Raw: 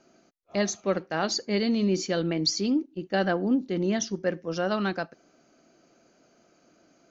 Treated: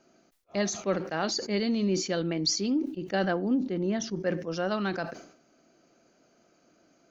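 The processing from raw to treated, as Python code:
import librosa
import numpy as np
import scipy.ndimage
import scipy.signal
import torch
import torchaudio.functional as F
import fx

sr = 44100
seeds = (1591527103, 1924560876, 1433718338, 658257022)

y = fx.high_shelf(x, sr, hz=2500.0, db=-8.0, at=(3.63, 4.2))
y = fx.sustainer(y, sr, db_per_s=89.0)
y = y * 10.0 ** (-2.5 / 20.0)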